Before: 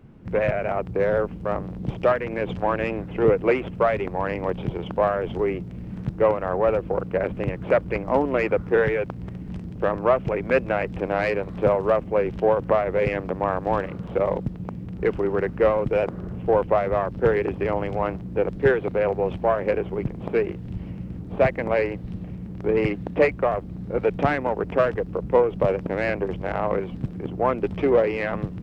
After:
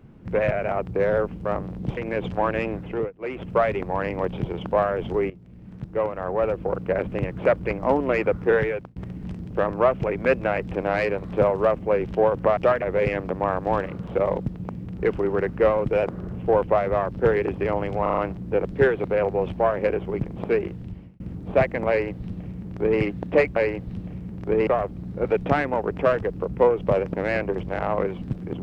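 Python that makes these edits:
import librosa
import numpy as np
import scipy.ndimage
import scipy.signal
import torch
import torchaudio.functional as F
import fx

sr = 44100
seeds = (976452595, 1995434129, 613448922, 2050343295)

y = fx.edit(x, sr, fx.move(start_s=1.97, length_s=0.25, to_s=12.82),
    fx.fade_down_up(start_s=3.06, length_s=0.69, db=-22.5, fade_s=0.31),
    fx.fade_in_from(start_s=5.55, length_s=1.59, floor_db=-15.0),
    fx.fade_out_span(start_s=8.76, length_s=0.45, curve='qsin'),
    fx.stutter(start_s=18.02, slice_s=0.04, count=5),
    fx.fade_out_span(start_s=20.57, length_s=0.47),
    fx.duplicate(start_s=21.73, length_s=1.11, to_s=23.4), tone=tone)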